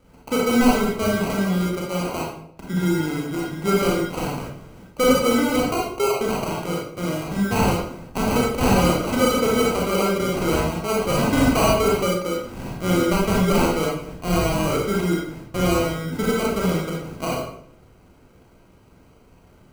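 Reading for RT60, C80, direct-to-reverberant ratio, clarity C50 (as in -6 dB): 0.65 s, 6.0 dB, -4.0 dB, 1.0 dB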